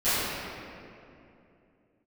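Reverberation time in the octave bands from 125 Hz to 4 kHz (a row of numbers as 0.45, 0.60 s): 3.1, 3.4, 2.9, 2.4, 2.2, 1.6 s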